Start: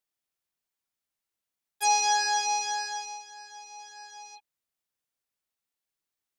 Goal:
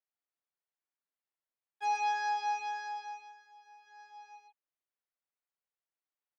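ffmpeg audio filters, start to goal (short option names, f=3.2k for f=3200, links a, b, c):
-filter_complex "[0:a]asplit=3[a][b][c];[a]afade=t=out:st=3.31:d=0.02[d];[b]aeval=exprs='(tanh(224*val(0)+0.75)-tanh(0.75))/224':c=same,afade=t=in:st=3.31:d=0.02,afade=t=out:st=3.86:d=0.02[e];[c]afade=t=in:st=3.86:d=0.02[f];[d][e][f]amix=inputs=3:normalize=0,highpass=400,lowpass=2.1k,aecho=1:1:122:0.668,volume=-6dB"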